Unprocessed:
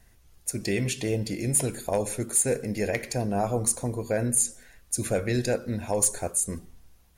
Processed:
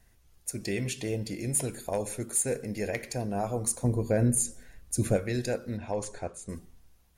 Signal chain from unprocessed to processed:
0:03.84–0:05.17: low-shelf EQ 450 Hz +10 dB
0:05.77–0:06.49: low-pass filter 4,100 Hz 12 dB per octave
level −4.5 dB

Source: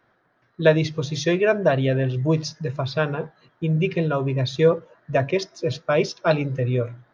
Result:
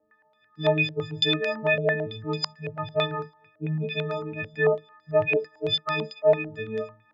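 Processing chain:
every partial snapped to a pitch grid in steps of 6 semitones
flanger 0.46 Hz, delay 3.7 ms, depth 3.6 ms, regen −8%
low-pass on a step sequencer 9 Hz 560–4,800 Hz
level −6 dB

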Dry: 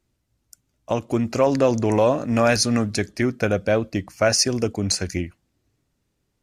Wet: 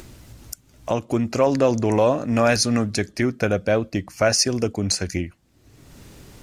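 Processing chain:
upward compression, threshold −21 dBFS

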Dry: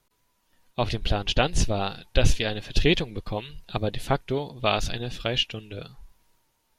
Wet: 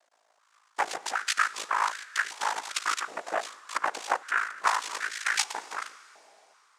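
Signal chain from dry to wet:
downward compressor 6 to 1, threshold −26 dBFS, peak gain reduction 13.5 dB
cochlear-implant simulation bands 3
ring modulation 27 Hz
on a send at −17 dB: convolution reverb RT60 3.2 s, pre-delay 28 ms
on the sum: high-pass on a step sequencer 2.6 Hz 690–1,600 Hz
level +4 dB

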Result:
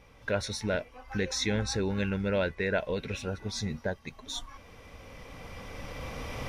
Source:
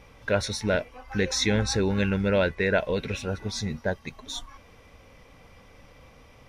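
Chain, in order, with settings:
camcorder AGC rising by 8.5 dB per second
level −5.5 dB

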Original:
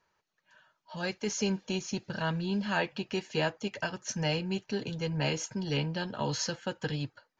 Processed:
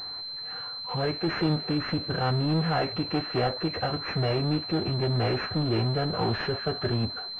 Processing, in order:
power curve on the samples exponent 0.5
phase-vocoder pitch shift with formants kept −4 semitones
switching amplifier with a slow clock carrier 4,100 Hz

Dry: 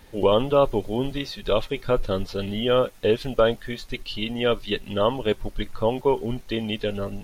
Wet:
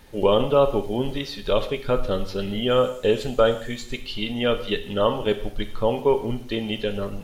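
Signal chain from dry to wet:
0:02.70–0:03.97: parametric band 7,300 Hz +13.5 dB 0.26 octaves
reverb whose tail is shaped and stops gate 230 ms falling, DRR 8 dB

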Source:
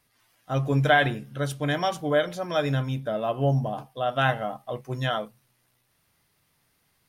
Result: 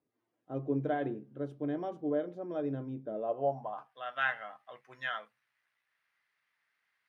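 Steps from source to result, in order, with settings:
band-pass filter sweep 340 Hz → 1,800 Hz, 0:03.11–0:04.01
level −1.5 dB

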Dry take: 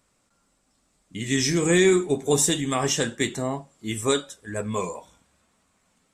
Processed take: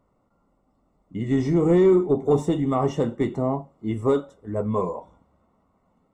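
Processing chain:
soft clipping −14.5 dBFS, distortion −17 dB
Savitzky-Golay smoothing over 65 samples
level +4.5 dB

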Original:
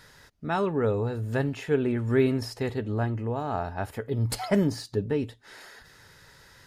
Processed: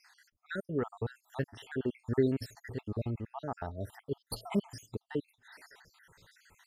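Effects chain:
time-frequency cells dropped at random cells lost 64%
level −4.5 dB

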